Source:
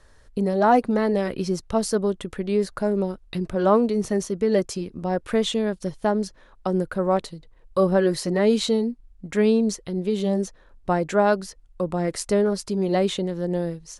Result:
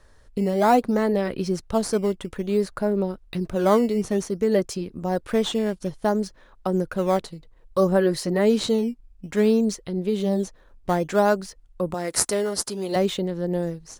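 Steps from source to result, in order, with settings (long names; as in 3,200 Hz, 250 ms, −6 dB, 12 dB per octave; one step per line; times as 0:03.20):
0:11.94–0:12.96: RIAA equalisation recording
in parallel at −12 dB: sample-and-hold swept by an LFO 10×, swing 160% 0.58 Hz
on the sum: level −2 dB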